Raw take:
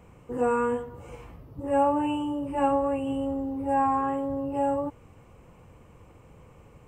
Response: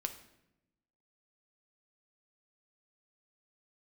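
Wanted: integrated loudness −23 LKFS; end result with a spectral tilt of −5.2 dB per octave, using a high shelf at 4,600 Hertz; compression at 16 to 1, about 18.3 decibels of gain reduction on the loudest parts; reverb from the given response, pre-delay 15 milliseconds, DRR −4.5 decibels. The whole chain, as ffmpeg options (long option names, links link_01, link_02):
-filter_complex "[0:a]highshelf=frequency=4600:gain=6,acompressor=threshold=-38dB:ratio=16,asplit=2[link_01][link_02];[1:a]atrim=start_sample=2205,adelay=15[link_03];[link_02][link_03]afir=irnorm=-1:irlink=0,volume=4.5dB[link_04];[link_01][link_04]amix=inputs=2:normalize=0,volume=13.5dB"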